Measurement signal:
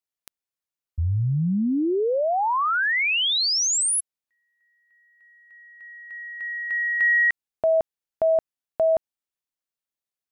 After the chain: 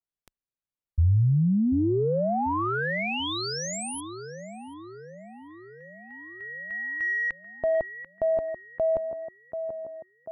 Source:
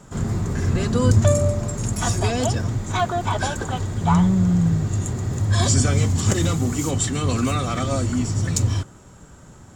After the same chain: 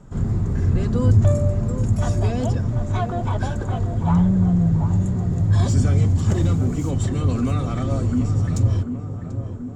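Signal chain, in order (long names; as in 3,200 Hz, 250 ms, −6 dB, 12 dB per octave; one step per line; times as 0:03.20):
tape delay 738 ms, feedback 73%, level −7 dB, low-pass 1,100 Hz
soft clipping −8 dBFS
spectral tilt −2.5 dB per octave
level −5.5 dB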